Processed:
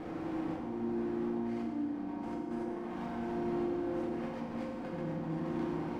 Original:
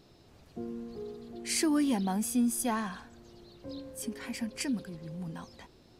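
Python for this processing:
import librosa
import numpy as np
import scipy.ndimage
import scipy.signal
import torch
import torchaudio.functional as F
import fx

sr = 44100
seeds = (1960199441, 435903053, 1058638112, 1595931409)

p1 = fx.bin_compress(x, sr, power=0.4)
p2 = scipy.signal.sosfilt(scipy.signal.butter(2, 1100.0, 'lowpass', fs=sr, output='sos'), p1)
p3 = fx.over_compress(p2, sr, threshold_db=-35.0, ratio=-1.0)
p4 = fx.chorus_voices(p3, sr, voices=2, hz=1.4, base_ms=21, depth_ms=3.0, mix_pct=25)
p5 = np.clip(p4, -10.0 ** (-38.5 / 20.0), 10.0 ** (-38.5 / 20.0))
p6 = p5 + fx.echo_single(p5, sr, ms=717, db=-8.0, dry=0)
p7 = fx.rev_fdn(p6, sr, rt60_s=1.5, lf_ratio=1.55, hf_ratio=0.95, size_ms=19.0, drr_db=-2.5)
y = p7 * 10.0 ** (-4.5 / 20.0)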